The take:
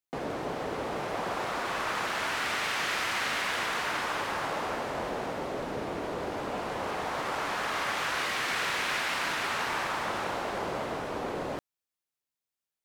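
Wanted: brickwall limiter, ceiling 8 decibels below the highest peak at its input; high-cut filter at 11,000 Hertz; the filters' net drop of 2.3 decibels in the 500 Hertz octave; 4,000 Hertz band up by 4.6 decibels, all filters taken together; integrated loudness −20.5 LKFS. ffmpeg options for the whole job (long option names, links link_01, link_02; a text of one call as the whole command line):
ffmpeg -i in.wav -af "lowpass=11000,equalizer=frequency=500:width_type=o:gain=-3,equalizer=frequency=4000:width_type=o:gain=6,volume=12.5dB,alimiter=limit=-11.5dB:level=0:latency=1" out.wav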